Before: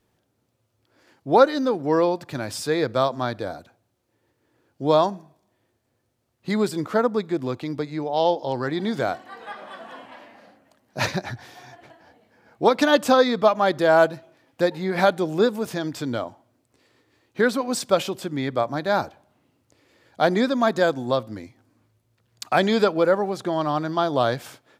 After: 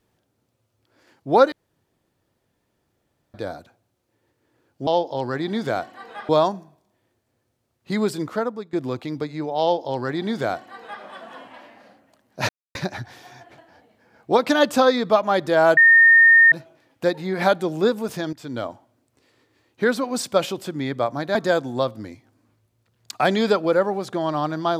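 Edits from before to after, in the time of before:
1.52–3.34 room tone
6.76–7.31 fade out, to -16 dB
8.19–9.61 copy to 4.87
11.07 insert silence 0.26 s
14.09 add tone 1830 Hz -8.5 dBFS 0.75 s
15.9–16.22 fade in, from -15.5 dB
18.92–20.67 cut

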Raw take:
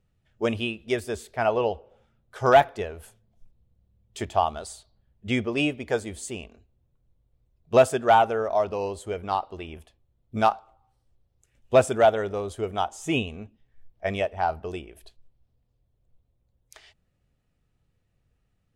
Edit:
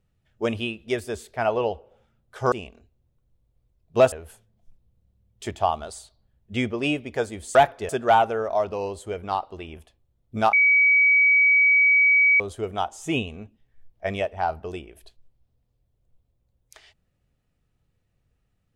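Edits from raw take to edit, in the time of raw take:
2.52–2.86 swap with 6.29–7.89
10.53–12.4 bleep 2270 Hz -14 dBFS

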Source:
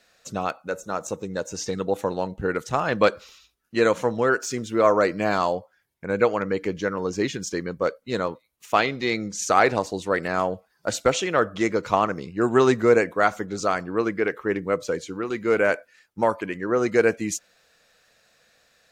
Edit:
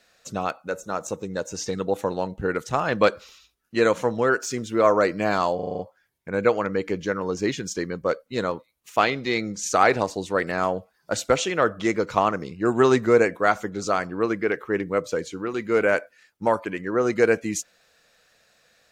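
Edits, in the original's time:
5.55 stutter 0.04 s, 7 plays

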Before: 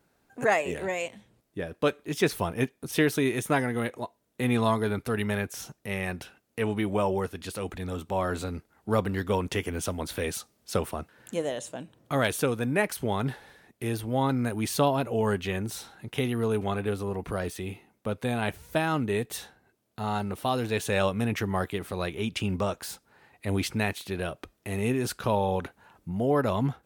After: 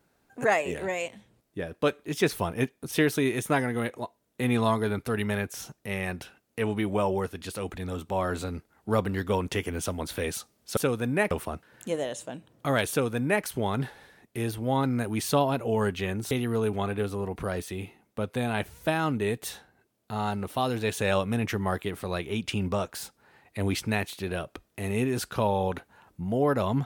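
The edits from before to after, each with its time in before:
12.36–12.9 copy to 10.77
15.77–16.19 cut

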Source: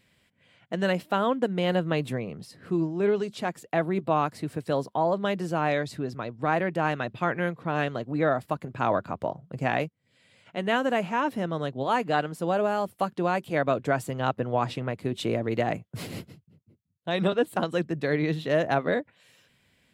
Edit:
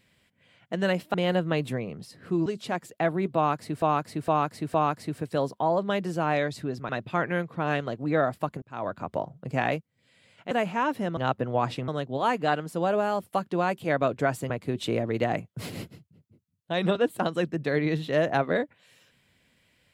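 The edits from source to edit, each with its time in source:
1.14–1.54 cut
2.86–3.19 cut
4.09–4.55 loop, 4 plays
6.24–6.97 cut
8.7–9.2 fade in
10.59–10.88 cut
14.16–14.87 move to 11.54

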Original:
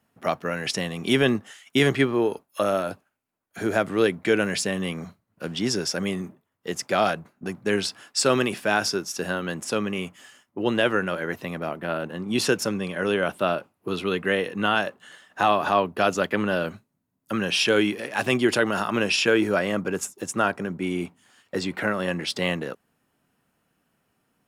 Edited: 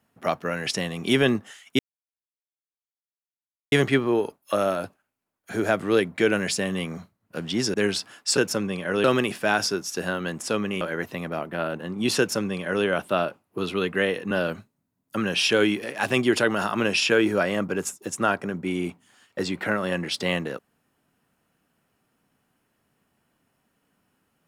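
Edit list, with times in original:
1.79 insert silence 1.93 s
5.81–7.63 cut
10.03–11.11 cut
12.48–13.15 copy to 8.26
14.61–16.47 cut

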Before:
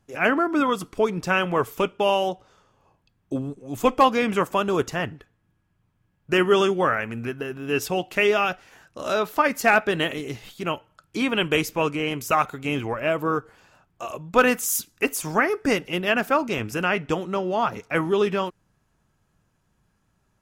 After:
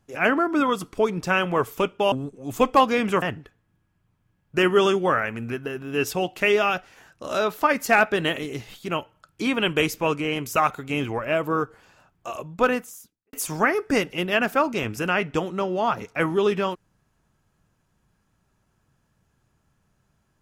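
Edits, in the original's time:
2.12–3.36 cut
4.46–4.97 cut
14.09–15.08 studio fade out

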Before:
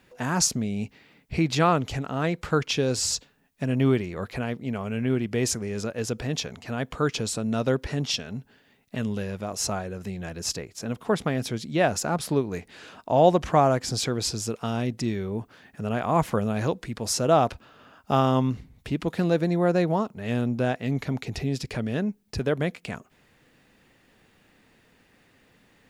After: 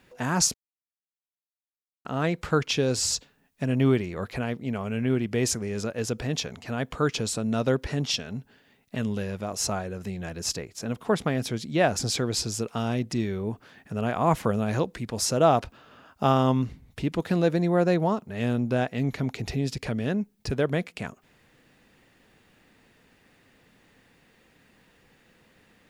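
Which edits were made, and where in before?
0.54–2.05 mute
11.99–13.87 cut

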